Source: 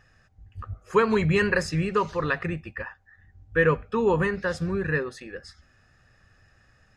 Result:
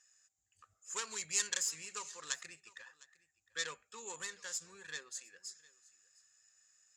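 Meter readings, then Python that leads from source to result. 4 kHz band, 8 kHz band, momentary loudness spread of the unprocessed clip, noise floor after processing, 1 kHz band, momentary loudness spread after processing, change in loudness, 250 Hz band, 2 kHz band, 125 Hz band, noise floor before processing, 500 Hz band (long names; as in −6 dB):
−2.0 dB, +10.0 dB, 18 LU, −83 dBFS, −21.5 dB, 19 LU, −14.5 dB, −35.0 dB, −17.0 dB, −38.5 dB, −61 dBFS, −29.5 dB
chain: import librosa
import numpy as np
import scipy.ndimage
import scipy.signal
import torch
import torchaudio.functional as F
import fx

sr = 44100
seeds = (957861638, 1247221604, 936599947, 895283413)

y = fx.tracing_dist(x, sr, depth_ms=0.13)
y = fx.bandpass_q(y, sr, hz=7200.0, q=10.0)
y = y + 10.0 ** (-22.0 / 20.0) * np.pad(y, (int(707 * sr / 1000.0), 0))[:len(y)]
y = F.gain(torch.from_numpy(y), 15.5).numpy()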